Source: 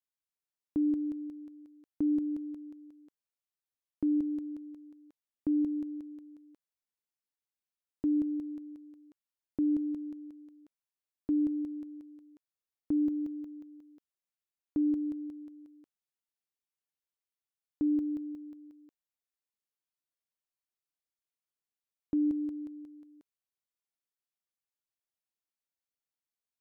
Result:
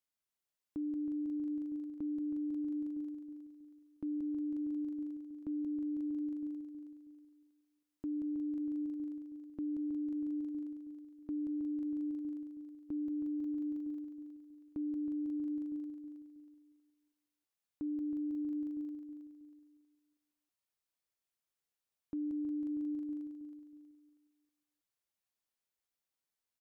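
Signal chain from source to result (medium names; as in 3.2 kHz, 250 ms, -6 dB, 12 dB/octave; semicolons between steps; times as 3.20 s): on a send: feedback delay 320 ms, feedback 39%, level -6.5 dB; on the sum: peak limiter -34.5 dBFS, peak gain reduction 11 dB; trim +1 dB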